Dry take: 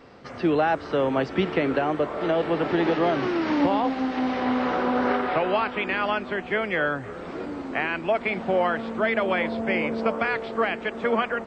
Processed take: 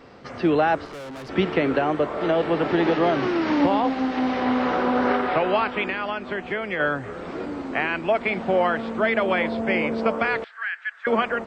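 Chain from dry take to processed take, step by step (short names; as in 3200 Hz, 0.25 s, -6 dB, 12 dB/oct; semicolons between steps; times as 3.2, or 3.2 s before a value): 0.85–1.29 tube stage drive 37 dB, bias 0.7; 5.88–6.8 compressor 3:1, threshold -27 dBFS, peak gain reduction 5.5 dB; 10.44–11.07 ladder high-pass 1500 Hz, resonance 75%; gain +2 dB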